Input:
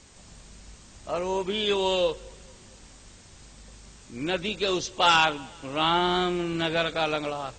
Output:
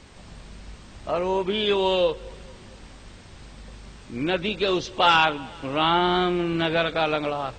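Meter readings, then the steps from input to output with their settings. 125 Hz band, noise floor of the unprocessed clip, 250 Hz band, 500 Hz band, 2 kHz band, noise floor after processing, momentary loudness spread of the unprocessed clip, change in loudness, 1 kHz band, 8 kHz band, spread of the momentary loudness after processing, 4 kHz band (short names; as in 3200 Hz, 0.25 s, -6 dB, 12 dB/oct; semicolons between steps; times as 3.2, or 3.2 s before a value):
+4.0 dB, -51 dBFS, +4.0 dB, +3.5 dB, +2.5 dB, -47 dBFS, 13 LU, +2.5 dB, +3.0 dB, -7.0 dB, 11 LU, +1.0 dB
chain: bell 7100 Hz -13.5 dB 0.9 oct; in parallel at -2 dB: compressor, threshold -33 dBFS, peak gain reduction 15.5 dB; on the sum: gain +1.5 dB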